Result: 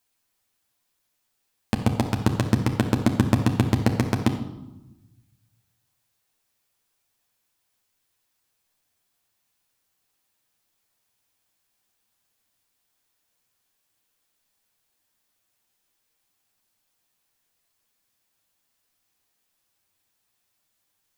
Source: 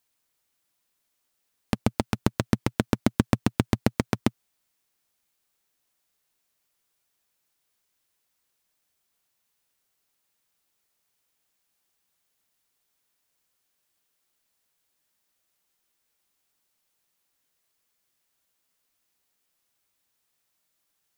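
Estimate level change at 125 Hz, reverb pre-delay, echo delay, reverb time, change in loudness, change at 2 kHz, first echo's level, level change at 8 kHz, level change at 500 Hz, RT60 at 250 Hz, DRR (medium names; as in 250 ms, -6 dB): +6.0 dB, 9 ms, no echo, 1.0 s, +3.5 dB, +2.0 dB, no echo, +1.5 dB, +1.5 dB, 1.4 s, 2.0 dB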